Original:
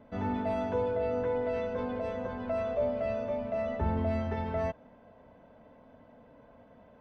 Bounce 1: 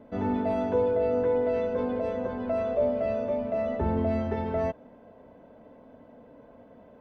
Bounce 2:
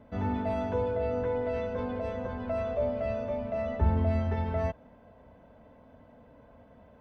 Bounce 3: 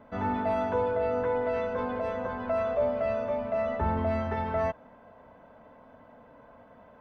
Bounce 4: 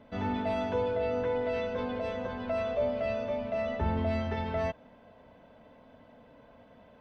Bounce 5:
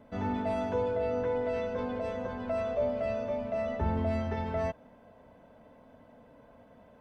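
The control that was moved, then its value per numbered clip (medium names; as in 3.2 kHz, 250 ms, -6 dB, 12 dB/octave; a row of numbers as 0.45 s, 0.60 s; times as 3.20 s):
peaking EQ, frequency: 360 Hz, 63 Hz, 1.2 kHz, 3.6 kHz, 10 kHz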